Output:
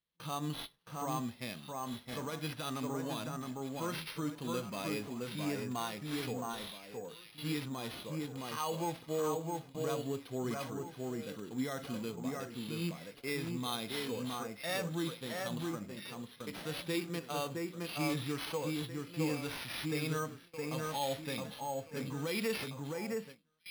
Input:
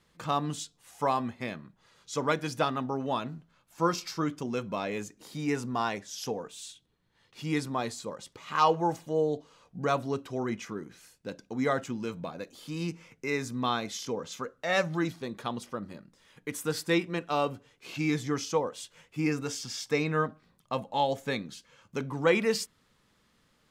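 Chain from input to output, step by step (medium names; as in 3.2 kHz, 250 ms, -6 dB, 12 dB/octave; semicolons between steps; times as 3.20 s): peak limiter -22 dBFS, peak gain reduction 11 dB; peaking EQ 3.3 kHz +11 dB 0.8 oct; echo whose repeats swap between lows and highs 666 ms, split 2.1 kHz, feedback 53%, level -2.5 dB; careless resampling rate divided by 6×, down none, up hold; harmonic-percussive split percussive -9 dB; gate with hold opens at -37 dBFS; trim -4 dB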